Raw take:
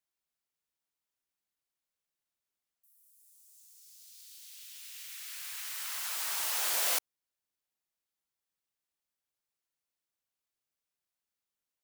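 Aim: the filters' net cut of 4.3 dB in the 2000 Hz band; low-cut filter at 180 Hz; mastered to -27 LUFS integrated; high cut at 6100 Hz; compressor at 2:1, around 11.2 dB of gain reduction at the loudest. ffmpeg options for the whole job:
-af "highpass=180,lowpass=6.1k,equalizer=f=2k:t=o:g=-5.5,acompressor=threshold=-54dB:ratio=2,volume=22.5dB"

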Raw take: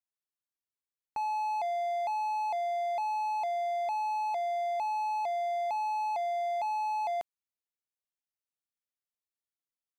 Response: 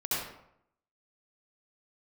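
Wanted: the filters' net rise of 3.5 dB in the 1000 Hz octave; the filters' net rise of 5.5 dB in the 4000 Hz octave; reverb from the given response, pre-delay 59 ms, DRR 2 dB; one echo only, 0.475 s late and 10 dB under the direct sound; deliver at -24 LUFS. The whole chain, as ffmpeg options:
-filter_complex "[0:a]equalizer=f=1k:t=o:g=4.5,equalizer=f=4k:t=o:g=6,aecho=1:1:475:0.316,asplit=2[a][b];[1:a]atrim=start_sample=2205,adelay=59[c];[b][c]afir=irnorm=-1:irlink=0,volume=-9.5dB[d];[a][d]amix=inputs=2:normalize=0,volume=4dB"

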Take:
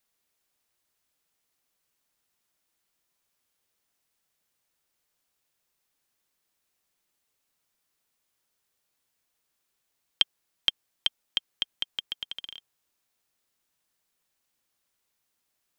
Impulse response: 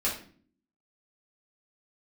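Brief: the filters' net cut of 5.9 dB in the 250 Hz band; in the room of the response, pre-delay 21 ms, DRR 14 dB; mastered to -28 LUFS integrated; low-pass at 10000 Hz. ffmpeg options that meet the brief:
-filter_complex "[0:a]lowpass=10k,equalizer=f=250:t=o:g=-8.5,asplit=2[a][b];[1:a]atrim=start_sample=2205,adelay=21[c];[b][c]afir=irnorm=-1:irlink=0,volume=-22dB[d];[a][d]amix=inputs=2:normalize=0,volume=3dB"

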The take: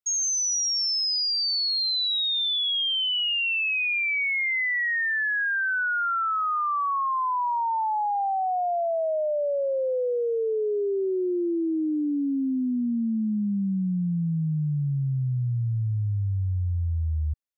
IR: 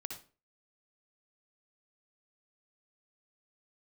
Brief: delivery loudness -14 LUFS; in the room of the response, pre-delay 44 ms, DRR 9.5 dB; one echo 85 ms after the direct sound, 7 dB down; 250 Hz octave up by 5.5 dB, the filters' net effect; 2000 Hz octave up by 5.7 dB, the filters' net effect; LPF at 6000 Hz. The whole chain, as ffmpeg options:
-filter_complex "[0:a]lowpass=6k,equalizer=f=250:t=o:g=7,equalizer=f=2k:t=o:g=7,aecho=1:1:85:0.447,asplit=2[a][b];[1:a]atrim=start_sample=2205,adelay=44[c];[b][c]afir=irnorm=-1:irlink=0,volume=-7.5dB[d];[a][d]amix=inputs=2:normalize=0,volume=6dB"

